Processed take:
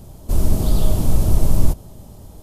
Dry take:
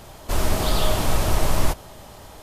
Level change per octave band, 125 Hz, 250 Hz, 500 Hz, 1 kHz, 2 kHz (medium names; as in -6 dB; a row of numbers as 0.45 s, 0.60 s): +6.5 dB, +4.5 dB, -3.0 dB, -8.5 dB, -14.0 dB